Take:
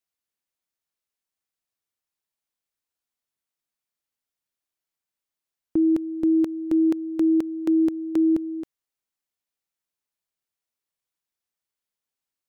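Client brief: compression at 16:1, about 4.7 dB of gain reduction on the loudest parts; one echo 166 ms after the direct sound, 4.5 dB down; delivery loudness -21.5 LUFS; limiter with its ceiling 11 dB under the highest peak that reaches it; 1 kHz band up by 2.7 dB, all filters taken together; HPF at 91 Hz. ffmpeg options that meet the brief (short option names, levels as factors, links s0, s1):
-af "highpass=91,equalizer=f=1000:t=o:g=3.5,acompressor=threshold=0.0891:ratio=16,alimiter=level_in=1.19:limit=0.0631:level=0:latency=1,volume=0.841,aecho=1:1:166:0.596,volume=5.31"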